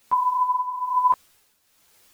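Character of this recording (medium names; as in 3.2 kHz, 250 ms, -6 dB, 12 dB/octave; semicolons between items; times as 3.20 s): a quantiser's noise floor 10-bit, dither triangular; tremolo triangle 1.1 Hz, depth 75%; a shimmering, thickened sound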